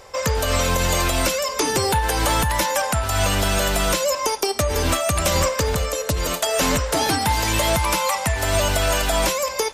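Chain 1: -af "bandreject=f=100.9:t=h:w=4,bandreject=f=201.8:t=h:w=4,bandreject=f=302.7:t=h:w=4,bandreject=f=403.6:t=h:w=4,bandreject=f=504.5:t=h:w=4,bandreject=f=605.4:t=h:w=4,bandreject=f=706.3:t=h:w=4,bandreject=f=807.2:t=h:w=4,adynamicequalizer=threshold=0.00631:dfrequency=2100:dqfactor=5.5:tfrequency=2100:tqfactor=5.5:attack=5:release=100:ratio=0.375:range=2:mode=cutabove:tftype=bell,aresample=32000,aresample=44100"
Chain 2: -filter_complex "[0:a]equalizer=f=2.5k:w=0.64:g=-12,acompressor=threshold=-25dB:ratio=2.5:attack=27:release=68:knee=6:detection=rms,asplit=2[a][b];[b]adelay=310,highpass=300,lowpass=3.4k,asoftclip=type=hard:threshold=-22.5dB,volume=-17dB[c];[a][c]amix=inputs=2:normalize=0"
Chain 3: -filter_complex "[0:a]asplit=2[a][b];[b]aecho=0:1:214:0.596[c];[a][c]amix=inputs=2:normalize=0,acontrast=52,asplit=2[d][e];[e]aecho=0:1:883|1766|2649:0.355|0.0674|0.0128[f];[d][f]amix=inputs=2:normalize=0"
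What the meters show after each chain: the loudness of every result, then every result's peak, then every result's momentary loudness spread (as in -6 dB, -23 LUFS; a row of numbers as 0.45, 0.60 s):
-20.5, -26.0, -13.0 LUFS; -9.0, -12.5, -2.0 dBFS; 3, 2, 2 LU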